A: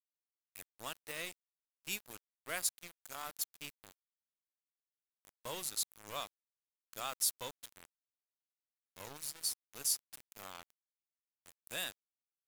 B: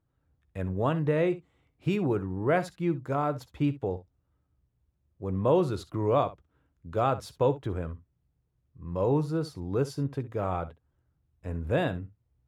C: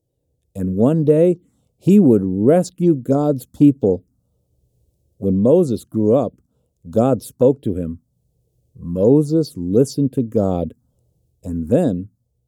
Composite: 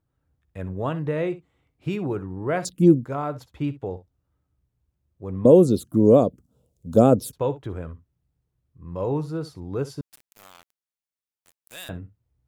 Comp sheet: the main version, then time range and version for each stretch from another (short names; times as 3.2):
B
2.65–3.05 from C
5.45–7.33 from C
10.01–11.89 from A